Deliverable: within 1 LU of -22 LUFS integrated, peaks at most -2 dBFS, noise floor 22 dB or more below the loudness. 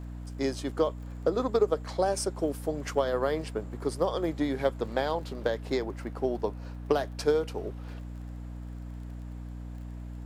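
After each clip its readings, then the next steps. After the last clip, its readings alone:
tick rate 24 per s; hum 60 Hz; highest harmonic 300 Hz; hum level -37 dBFS; loudness -30.5 LUFS; peak level -12.5 dBFS; loudness target -22.0 LUFS
-> de-click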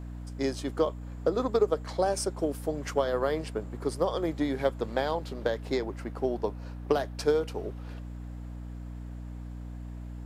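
tick rate 0 per s; hum 60 Hz; highest harmonic 300 Hz; hum level -37 dBFS
-> de-hum 60 Hz, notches 5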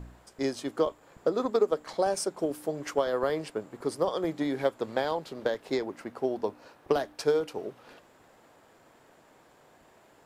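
hum not found; loudness -30.5 LUFS; peak level -13.0 dBFS; loudness target -22.0 LUFS
-> trim +8.5 dB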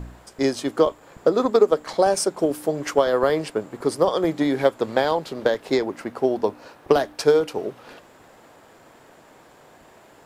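loudness -22.0 LUFS; peak level -4.5 dBFS; noise floor -51 dBFS

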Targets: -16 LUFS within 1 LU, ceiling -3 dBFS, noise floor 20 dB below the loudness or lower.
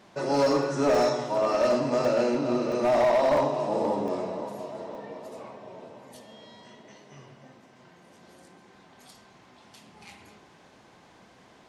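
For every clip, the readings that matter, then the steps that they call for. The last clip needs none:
clipped samples 1.1%; clipping level -17.5 dBFS; dropouts 6; longest dropout 1.2 ms; loudness -25.0 LUFS; peak level -17.5 dBFS; loudness target -16.0 LUFS
-> clip repair -17.5 dBFS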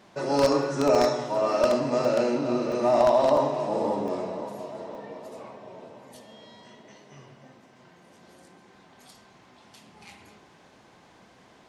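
clipped samples 0.0%; dropouts 6; longest dropout 1.2 ms
-> interpolate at 0.95/2.05/2.72/3.37/4.08/4.95 s, 1.2 ms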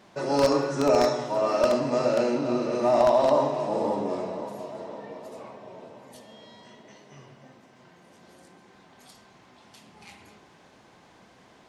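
dropouts 0; loudness -24.5 LUFS; peak level -8.5 dBFS; loudness target -16.0 LUFS
-> trim +8.5 dB; peak limiter -3 dBFS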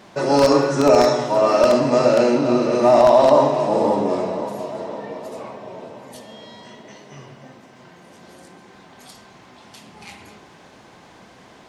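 loudness -16.5 LUFS; peak level -3.0 dBFS; noise floor -47 dBFS

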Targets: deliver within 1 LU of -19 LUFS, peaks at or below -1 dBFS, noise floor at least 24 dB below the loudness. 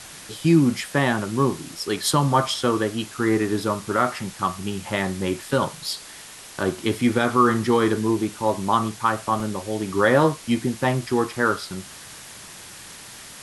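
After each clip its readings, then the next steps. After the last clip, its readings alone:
dropouts 2; longest dropout 2.0 ms; noise floor -42 dBFS; noise floor target -47 dBFS; loudness -22.5 LUFS; peak level -5.0 dBFS; loudness target -19.0 LUFS
-> interpolate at 4.72/9.40 s, 2 ms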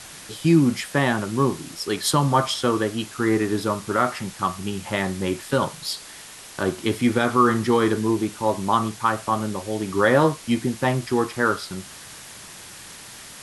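dropouts 0; noise floor -42 dBFS; noise floor target -47 dBFS
-> noise reduction 6 dB, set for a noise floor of -42 dBFS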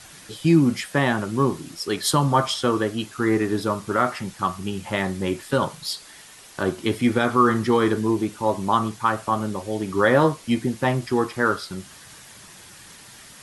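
noise floor -46 dBFS; noise floor target -47 dBFS
-> noise reduction 6 dB, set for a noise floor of -46 dBFS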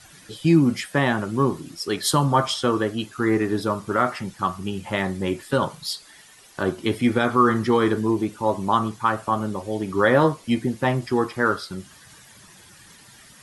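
noise floor -49 dBFS; loudness -22.5 LUFS; peak level -5.0 dBFS; loudness target -19.0 LUFS
-> trim +3.5 dB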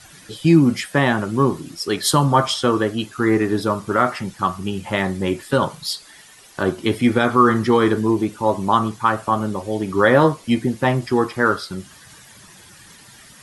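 loudness -19.0 LUFS; peak level -1.5 dBFS; noise floor -46 dBFS

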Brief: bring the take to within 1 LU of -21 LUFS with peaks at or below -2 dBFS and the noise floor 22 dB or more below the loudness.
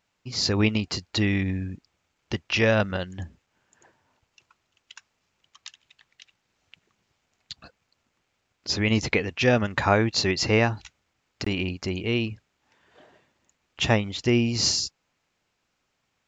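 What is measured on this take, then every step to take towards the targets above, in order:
loudness -24.5 LUFS; peak level -6.0 dBFS; loudness target -21.0 LUFS
-> trim +3.5 dB

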